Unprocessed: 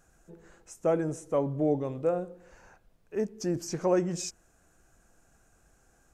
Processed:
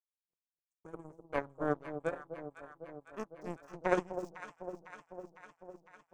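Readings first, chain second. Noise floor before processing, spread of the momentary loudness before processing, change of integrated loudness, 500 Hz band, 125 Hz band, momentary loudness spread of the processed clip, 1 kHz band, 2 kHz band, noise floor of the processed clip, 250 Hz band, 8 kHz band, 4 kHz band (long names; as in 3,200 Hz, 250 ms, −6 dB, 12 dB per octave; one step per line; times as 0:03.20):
−66 dBFS, 8 LU, −9.5 dB, −8.5 dB, −12.5 dB, 20 LU, −2.0 dB, +4.5 dB, below −85 dBFS, −10.0 dB, −21.0 dB, −13.5 dB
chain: gain on a spectral selection 0:00.68–0:01.10, 490–6,300 Hz −13 dB
power curve on the samples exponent 3
delay that swaps between a low-pass and a high-pass 252 ms, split 890 Hz, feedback 80%, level −9 dB
level +2.5 dB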